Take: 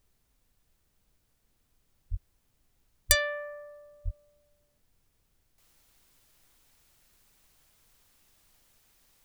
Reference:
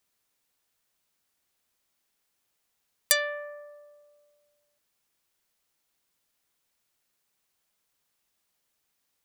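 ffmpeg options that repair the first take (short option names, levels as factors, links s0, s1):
-filter_complex "[0:a]asplit=3[s0][s1][s2];[s0]afade=t=out:st=2.1:d=0.02[s3];[s1]highpass=f=140:w=0.5412,highpass=f=140:w=1.3066,afade=t=in:st=2.1:d=0.02,afade=t=out:st=2.22:d=0.02[s4];[s2]afade=t=in:st=2.22:d=0.02[s5];[s3][s4][s5]amix=inputs=3:normalize=0,asplit=3[s6][s7][s8];[s6]afade=t=out:st=3.08:d=0.02[s9];[s7]highpass=f=140:w=0.5412,highpass=f=140:w=1.3066,afade=t=in:st=3.08:d=0.02,afade=t=out:st=3.2:d=0.02[s10];[s8]afade=t=in:st=3.2:d=0.02[s11];[s9][s10][s11]amix=inputs=3:normalize=0,asplit=3[s12][s13][s14];[s12]afade=t=out:st=4.04:d=0.02[s15];[s13]highpass=f=140:w=0.5412,highpass=f=140:w=1.3066,afade=t=in:st=4.04:d=0.02,afade=t=out:st=4.16:d=0.02[s16];[s14]afade=t=in:st=4.16:d=0.02[s17];[s15][s16][s17]amix=inputs=3:normalize=0,agate=range=0.0891:threshold=0.000562,asetnsamples=n=441:p=0,asendcmd='5.58 volume volume -11dB',volume=1"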